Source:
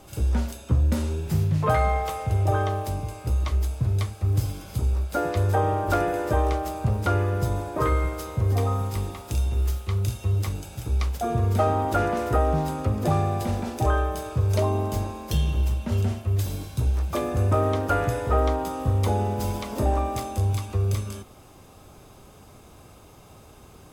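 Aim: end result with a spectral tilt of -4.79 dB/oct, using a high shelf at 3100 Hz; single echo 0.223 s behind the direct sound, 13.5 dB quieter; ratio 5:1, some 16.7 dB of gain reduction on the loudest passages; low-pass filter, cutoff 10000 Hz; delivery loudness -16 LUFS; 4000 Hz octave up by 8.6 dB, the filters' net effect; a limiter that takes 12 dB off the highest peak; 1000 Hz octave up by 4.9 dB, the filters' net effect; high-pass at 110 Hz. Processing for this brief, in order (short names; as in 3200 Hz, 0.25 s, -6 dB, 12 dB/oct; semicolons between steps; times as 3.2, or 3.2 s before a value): HPF 110 Hz; LPF 10000 Hz; bell 1000 Hz +6 dB; high shelf 3100 Hz +6 dB; bell 4000 Hz +6 dB; compressor 5:1, threshold -35 dBFS; limiter -30.5 dBFS; echo 0.223 s -13.5 dB; gain +24 dB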